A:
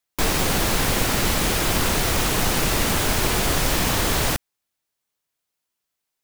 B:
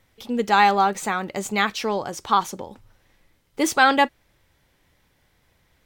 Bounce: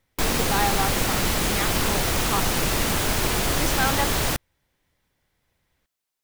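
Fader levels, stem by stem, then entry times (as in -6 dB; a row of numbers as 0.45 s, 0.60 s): -2.0 dB, -9.0 dB; 0.00 s, 0.00 s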